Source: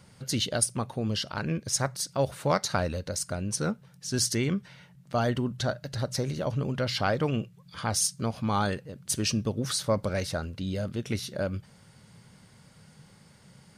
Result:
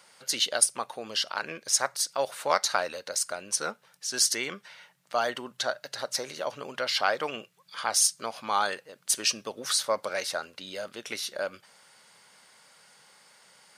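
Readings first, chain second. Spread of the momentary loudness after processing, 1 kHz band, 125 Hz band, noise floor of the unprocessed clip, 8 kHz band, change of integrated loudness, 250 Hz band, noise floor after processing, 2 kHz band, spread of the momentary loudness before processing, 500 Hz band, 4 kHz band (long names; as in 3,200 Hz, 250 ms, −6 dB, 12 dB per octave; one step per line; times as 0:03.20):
12 LU, +2.5 dB, −24.5 dB, −57 dBFS, +4.0 dB, +1.0 dB, −14.0 dB, −64 dBFS, +4.0 dB, 7 LU, −1.5 dB, +4.0 dB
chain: high-pass filter 690 Hz 12 dB per octave
level +4 dB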